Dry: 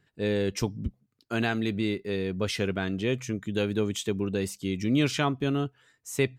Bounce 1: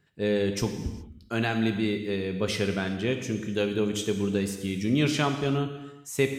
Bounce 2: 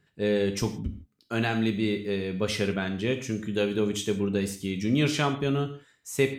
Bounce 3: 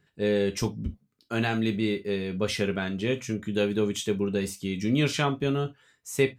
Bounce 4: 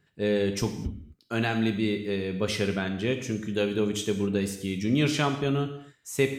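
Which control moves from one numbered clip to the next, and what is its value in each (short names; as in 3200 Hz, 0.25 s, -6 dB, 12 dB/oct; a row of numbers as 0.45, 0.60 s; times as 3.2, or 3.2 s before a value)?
non-linear reverb, gate: 440, 190, 90, 280 ms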